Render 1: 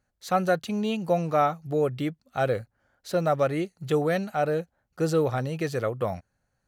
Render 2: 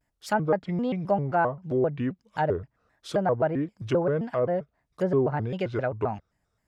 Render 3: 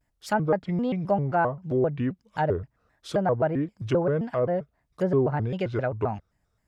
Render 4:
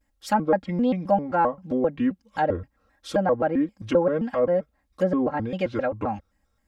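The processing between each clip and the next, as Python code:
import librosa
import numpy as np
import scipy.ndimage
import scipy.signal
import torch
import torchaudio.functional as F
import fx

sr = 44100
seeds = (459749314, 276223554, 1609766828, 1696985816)

y1 = fx.env_lowpass_down(x, sr, base_hz=1100.0, full_db=-21.5)
y1 = fx.vibrato_shape(y1, sr, shape='square', rate_hz=3.8, depth_cents=250.0)
y2 = fx.low_shelf(y1, sr, hz=120.0, db=5.5)
y3 = y2 + 0.93 * np.pad(y2, (int(3.7 * sr / 1000.0), 0))[:len(y2)]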